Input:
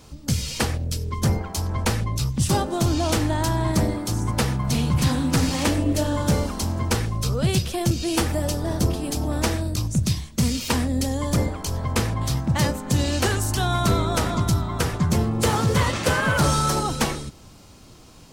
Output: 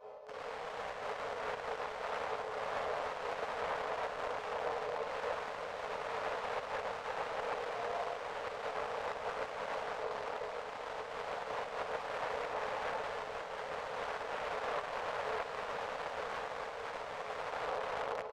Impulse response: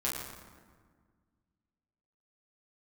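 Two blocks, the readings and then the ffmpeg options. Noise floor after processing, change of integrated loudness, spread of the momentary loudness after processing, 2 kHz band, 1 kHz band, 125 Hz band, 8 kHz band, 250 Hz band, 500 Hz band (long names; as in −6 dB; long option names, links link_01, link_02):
−44 dBFS, −16.5 dB, 4 LU, −11.0 dB, −9.0 dB, −38.5 dB, −29.5 dB, −33.0 dB, −10.0 dB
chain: -filter_complex "[1:a]atrim=start_sample=2205,asetrate=83790,aresample=44100[link_01];[0:a][link_01]afir=irnorm=-1:irlink=0,areverse,acompressor=threshold=-26dB:ratio=16,areverse,afftfilt=real='re*lt(hypot(re,im),0.0891)':imag='im*lt(hypot(re,im),0.0891)':win_size=1024:overlap=0.75,asplit=2[link_02][link_03];[link_03]aecho=0:1:54|203|209|346|417|808:0.708|0.141|0.668|0.316|0.562|0.473[link_04];[link_02][link_04]amix=inputs=2:normalize=0,aeval=exprs='(mod(47.3*val(0)+1,2)-1)/47.3':channel_layout=same,afftfilt=real='re*between(b*sr/4096,410,9200)':imag='im*between(b*sr/4096,410,9200)':win_size=4096:overlap=0.75,adynamicsmooth=sensitivity=3.5:basefreq=590,volume=11.5dB"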